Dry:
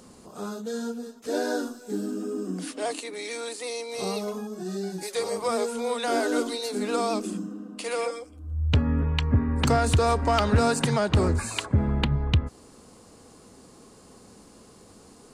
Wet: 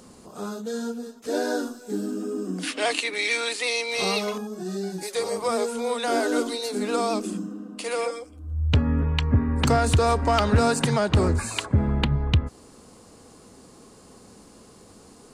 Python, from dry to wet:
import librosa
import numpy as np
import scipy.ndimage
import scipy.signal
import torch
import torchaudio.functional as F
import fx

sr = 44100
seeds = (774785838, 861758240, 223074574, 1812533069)

y = fx.peak_eq(x, sr, hz=2500.0, db=13.0, octaves=2.0, at=(2.63, 4.38))
y = y * librosa.db_to_amplitude(1.5)